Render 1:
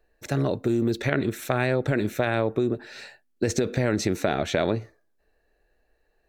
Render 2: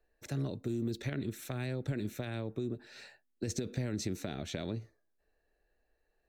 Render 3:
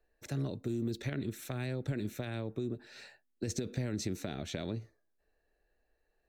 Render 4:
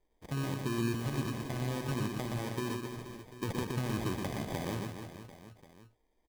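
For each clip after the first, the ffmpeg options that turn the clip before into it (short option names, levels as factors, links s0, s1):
-filter_complex "[0:a]acrossover=split=310|3000[s0][s1][s2];[s1]acompressor=threshold=0.00631:ratio=2[s3];[s0][s3][s2]amix=inputs=3:normalize=0,volume=0.376"
-af anull
-af "acrusher=samples=32:mix=1:aa=0.000001,aecho=1:1:120|276|478.8|742.4|1085:0.631|0.398|0.251|0.158|0.1"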